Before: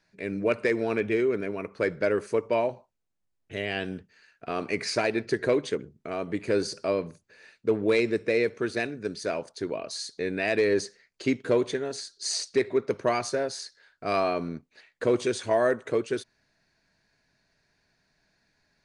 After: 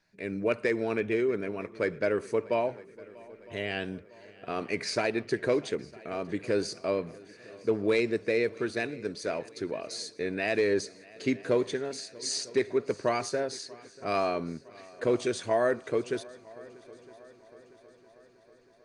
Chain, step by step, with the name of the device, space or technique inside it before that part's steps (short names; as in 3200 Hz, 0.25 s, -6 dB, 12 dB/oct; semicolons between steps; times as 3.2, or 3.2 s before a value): multi-head tape echo (multi-head echo 0.319 s, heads second and third, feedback 57%, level -23 dB; wow and flutter 14 cents); gain -2.5 dB